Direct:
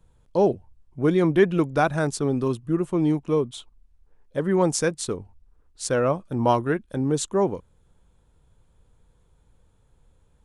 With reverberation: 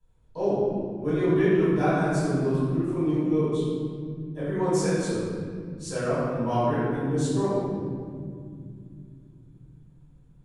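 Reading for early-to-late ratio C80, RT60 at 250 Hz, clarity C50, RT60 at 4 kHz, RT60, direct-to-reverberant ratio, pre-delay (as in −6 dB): −1.5 dB, 4.6 s, −4.0 dB, 1.3 s, 2.2 s, −14.5 dB, 3 ms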